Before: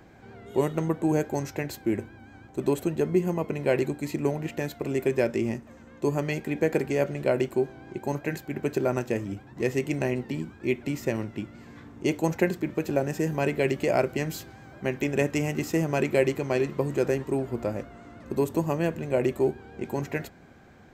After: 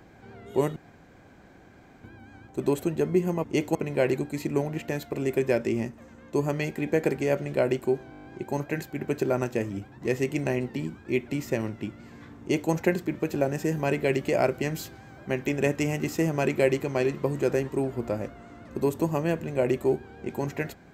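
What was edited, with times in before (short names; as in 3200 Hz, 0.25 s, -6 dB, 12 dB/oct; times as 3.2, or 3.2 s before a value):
0.76–2.04 room tone
7.8 stutter 0.02 s, 8 plays
11.95–12.26 copy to 3.44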